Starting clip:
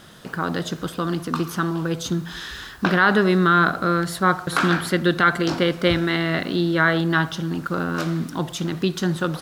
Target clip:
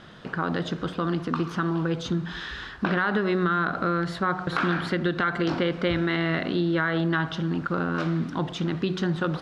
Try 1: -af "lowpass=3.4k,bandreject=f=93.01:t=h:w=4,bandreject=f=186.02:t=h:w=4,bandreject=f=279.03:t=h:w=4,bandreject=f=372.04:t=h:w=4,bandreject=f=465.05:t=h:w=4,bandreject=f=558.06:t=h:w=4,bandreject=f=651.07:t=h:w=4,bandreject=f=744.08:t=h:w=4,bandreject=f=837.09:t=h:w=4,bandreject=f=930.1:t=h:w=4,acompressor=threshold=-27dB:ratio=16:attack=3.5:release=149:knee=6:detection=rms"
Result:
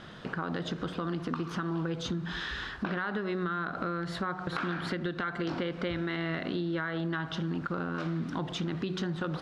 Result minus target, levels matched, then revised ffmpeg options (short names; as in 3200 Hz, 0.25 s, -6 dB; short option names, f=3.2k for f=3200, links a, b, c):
compressor: peak gain reduction +9 dB
-af "lowpass=3.4k,bandreject=f=93.01:t=h:w=4,bandreject=f=186.02:t=h:w=4,bandreject=f=279.03:t=h:w=4,bandreject=f=372.04:t=h:w=4,bandreject=f=465.05:t=h:w=4,bandreject=f=558.06:t=h:w=4,bandreject=f=651.07:t=h:w=4,bandreject=f=744.08:t=h:w=4,bandreject=f=837.09:t=h:w=4,bandreject=f=930.1:t=h:w=4,acompressor=threshold=-17.5dB:ratio=16:attack=3.5:release=149:knee=6:detection=rms"